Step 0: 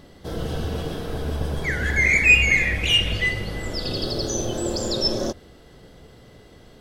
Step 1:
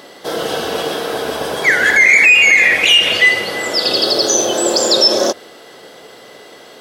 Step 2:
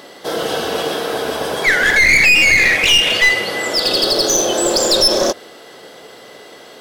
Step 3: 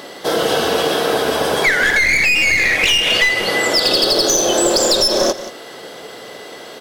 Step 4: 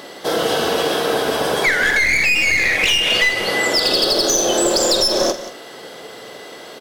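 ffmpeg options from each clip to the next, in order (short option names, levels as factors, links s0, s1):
-af "highpass=480,alimiter=level_in=6.31:limit=0.891:release=50:level=0:latency=1,volume=0.891"
-af "aeval=exprs='clip(val(0),-1,0.251)':c=same"
-af "acompressor=threshold=0.158:ratio=6,aecho=1:1:180:0.188,volume=1.68"
-filter_complex "[0:a]asplit=2[s0][s1];[s1]adelay=47,volume=0.251[s2];[s0][s2]amix=inputs=2:normalize=0,volume=0.794"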